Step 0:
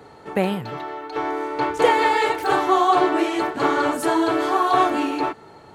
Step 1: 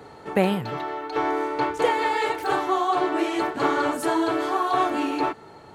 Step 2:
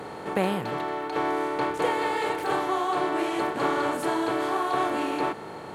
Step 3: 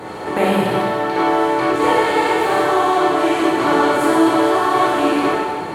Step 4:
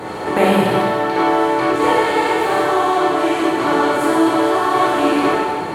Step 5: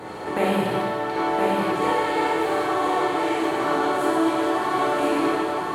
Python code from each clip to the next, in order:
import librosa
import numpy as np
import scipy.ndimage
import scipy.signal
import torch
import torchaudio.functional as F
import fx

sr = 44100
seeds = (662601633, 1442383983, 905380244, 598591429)

y1 = fx.rider(x, sr, range_db=4, speed_s=0.5)
y1 = F.gain(torch.from_numpy(y1), -3.0).numpy()
y2 = fx.bin_compress(y1, sr, power=0.6)
y2 = F.gain(torch.from_numpy(y2), -6.5).numpy()
y3 = fx.rev_plate(y2, sr, seeds[0], rt60_s=1.6, hf_ratio=1.0, predelay_ms=0, drr_db=-6.0)
y3 = F.gain(torch.from_numpy(y3), 3.5).numpy()
y4 = fx.rider(y3, sr, range_db=4, speed_s=2.0)
y5 = y4 + 10.0 ** (-4.0 / 20.0) * np.pad(y4, (int(1020 * sr / 1000.0), 0))[:len(y4)]
y5 = F.gain(torch.from_numpy(y5), -8.0).numpy()